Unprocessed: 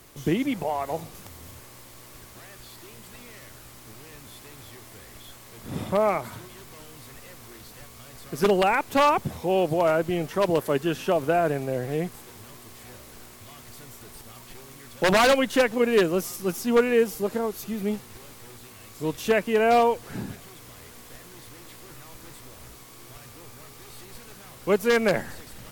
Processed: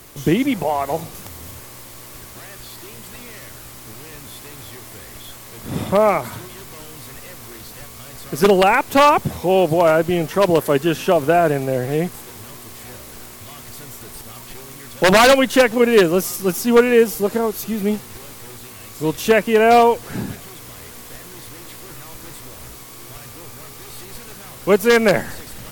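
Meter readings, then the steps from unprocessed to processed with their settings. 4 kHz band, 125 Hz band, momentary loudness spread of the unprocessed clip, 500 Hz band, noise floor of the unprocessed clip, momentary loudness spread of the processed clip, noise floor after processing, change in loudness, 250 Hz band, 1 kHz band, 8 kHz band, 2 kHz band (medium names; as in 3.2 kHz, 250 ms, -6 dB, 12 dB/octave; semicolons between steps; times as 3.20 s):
+8.0 dB, +7.5 dB, 23 LU, +7.5 dB, -47 dBFS, 22 LU, -39 dBFS, +7.5 dB, +7.5 dB, +7.5 dB, +9.0 dB, +7.5 dB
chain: treble shelf 8.9 kHz +3.5 dB; trim +7.5 dB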